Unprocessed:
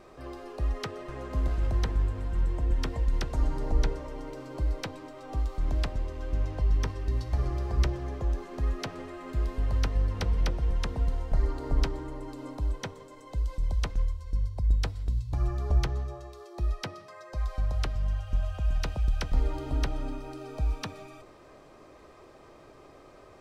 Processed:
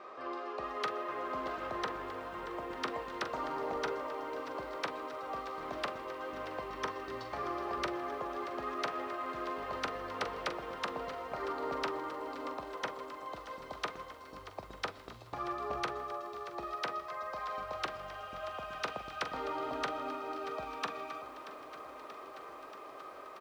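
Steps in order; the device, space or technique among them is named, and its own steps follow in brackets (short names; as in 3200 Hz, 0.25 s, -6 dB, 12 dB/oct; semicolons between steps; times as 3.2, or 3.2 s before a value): intercom (BPF 450–3600 Hz; bell 1200 Hz +8 dB 0.38 oct; soft clip -29.5 dBFS, distortion -16 dB; doubler 43 ms -10.5 dB); lo-fi delay 0.632 s, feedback 80%, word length 10-bit, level -14 dB; gain +3 dB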